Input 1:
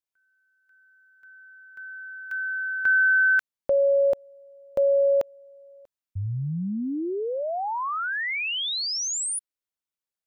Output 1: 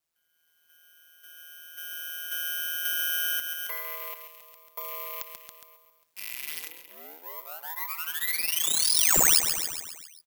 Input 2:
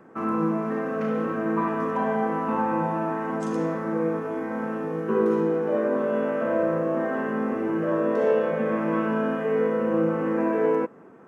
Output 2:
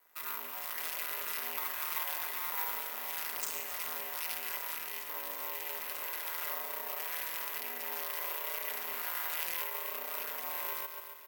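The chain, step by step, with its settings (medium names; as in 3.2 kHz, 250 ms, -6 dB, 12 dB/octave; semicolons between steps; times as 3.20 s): rattle on loud lows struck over -38 dBFS, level -27 dBFS; treble shelf 2.3 kHz +5 dB; comb 5.9 ms, depth 98%; on a send: feedback delay 136 ms, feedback 56%, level -10.5 dB; on the sum: half-wave rectifier; level rider gain up to 6.5 dB; high-pass 320 Hz 24 dB/octave; compression 2.5:1, threshold -21 dBFS; ring modulator 81 Hz; differentiator; small resonant body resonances 1/2 kHz, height 13 dB, ringing for 70 ms; careless resampling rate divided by 3×, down none, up zero stuff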